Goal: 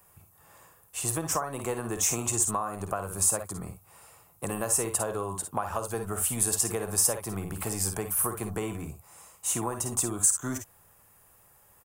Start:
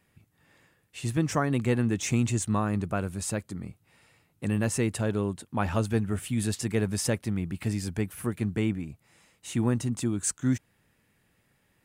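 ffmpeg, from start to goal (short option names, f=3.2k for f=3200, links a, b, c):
-filter_complex "[0:a]acrossover=split=180[a][b];[a]asoftclip=type=tanh:threshold=-38dB[c];[c][b]amix=inputs=2:normalize=0,bandreject=f=920:w=11,asplit=2[d][e];[e]aecho=0:1:51|62:0.335|0.266[f];[d][f]amix=inputs=2:normalize=0,asoftclip=type=hard:threshold=-14dB,equalizer=f=125:t=o:w=1:g=-4,equalizer=f=250:t=o:w=1:g=-12,equalizer=f=1k:t=o:w=1:g=11,equalizer=f=2k:t=o:w=1:g=-10,equalizer=f=4k:t=o:w=1:g=-9,acompressor=threshold=-35dB:ratio=5,aemphasis=mode=production:type=50kf,volume=6.5dB"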